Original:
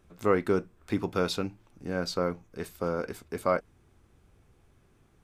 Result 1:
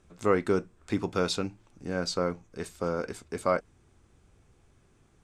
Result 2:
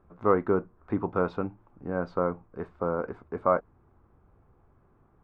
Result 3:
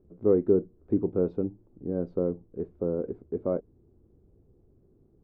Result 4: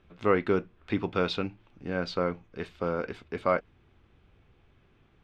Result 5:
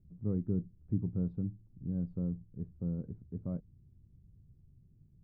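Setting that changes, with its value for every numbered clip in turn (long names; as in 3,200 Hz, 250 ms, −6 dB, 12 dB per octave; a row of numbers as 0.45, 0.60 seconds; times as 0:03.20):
low-pass with resonance, frequency: 8,000, 1,100, 400, 3,100, 150 Hertz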